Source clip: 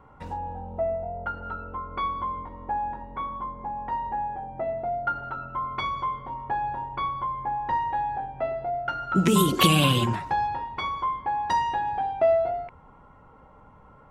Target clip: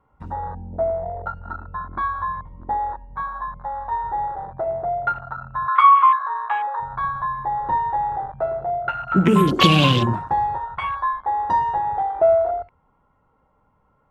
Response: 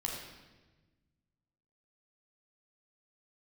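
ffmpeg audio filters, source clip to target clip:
-filter_complex "[0:a]asettb=1/sr,asplit=3[a][b][c];[a]atrim=end=5.684[d];[b]atrim=start=5.68:end=6.8,asetpts=PTS-STARTPTS,afade=t=in:d=0.004:c=qsin,afade=t=out:st=1.116:d=0.004:c=qsin,highpass=f=1.2k:t=q:w=9.7[e];[c]atrim=start=6.796[f];[d][e]acrossfade=d=0.004:c1=hsin:c2=qsin[g];[g][f]acrossfade=d=0.004:c1=qsin:c2=hsin,afwtdn=0.0316,volume=5dB"

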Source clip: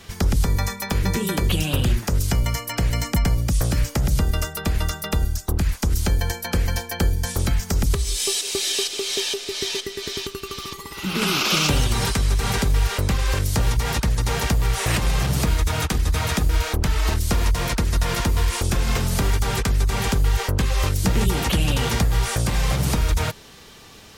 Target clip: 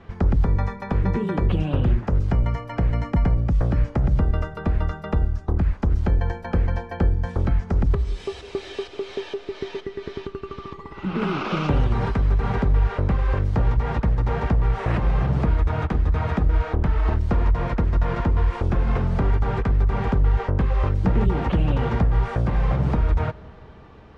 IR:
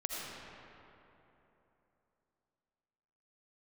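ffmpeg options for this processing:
-filter_complex "[0:a]lowpass=1.3k,asplit=2[a][b];[1:a]atrim=start_sample=2205[c];[b][c]afir=irnorm=-1:irlink=0,volume=-22.5dB[d];[a][d]amix=inputs=2:normalize=0"

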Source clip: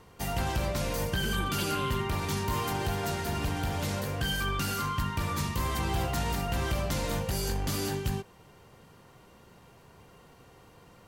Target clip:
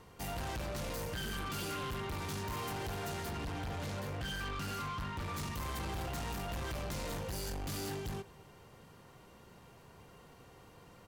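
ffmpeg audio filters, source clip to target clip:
-filter_complex "[0:a]asettb=1/sr,asplit=3[a][b][c];[a]atrim=end=3.304[d];[b]atrim=start=3.3:end=5.34,asetpts=PTS-STARTPTS,afade=t=in:d=0.004:c=qsin,afade=t=out:st=2.036:d=0.004:c=qsin,highshelf=f=6.2k:g=-8.5[e];[c]atrim=start=5.336[f];[d][e]acrossfade=d=0.004:c1=hsin:c2=qsin[g];[g][f]acrossfade=d=0.004:c1=qsin:c2=hsin,asoftclip=type=tanh:threshold=-34.5dB,asplit=2[h][i];[i]adelay=215.7,volume=-22dB,highshelf=f=4k:g=-4.85[j];[h][j]amix=inputs=2:normalize=0,volume=-2dB"

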